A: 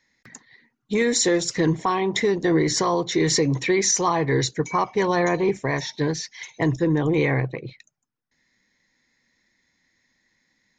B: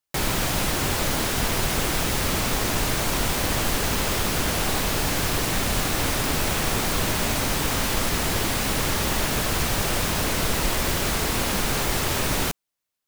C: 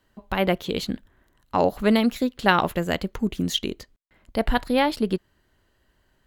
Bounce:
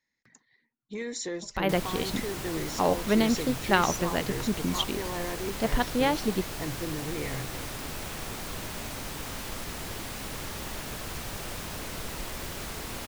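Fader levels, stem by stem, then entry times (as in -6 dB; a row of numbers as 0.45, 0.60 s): -14.5, -13.0, -4.5 dB; 0.00, 1.55, 1.25 s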